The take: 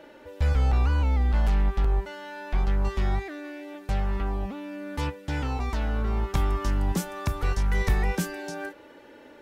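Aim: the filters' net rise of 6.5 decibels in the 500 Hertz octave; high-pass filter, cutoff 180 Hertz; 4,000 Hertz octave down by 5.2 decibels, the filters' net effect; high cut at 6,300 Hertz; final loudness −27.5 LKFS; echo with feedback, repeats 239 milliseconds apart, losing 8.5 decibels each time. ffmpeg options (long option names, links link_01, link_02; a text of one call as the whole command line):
ffmpeg -i in.wav -af "highpass=180,lowpass=6300,equalizer=frequency=500:width_type=o:gain=8.5,equalizer=frequency=4000:width_type=o:gain=-6.5,aecho=1:1:239|478|717|956:0.376|0.143|0.0543|0.0206,volume=4dB" out.wav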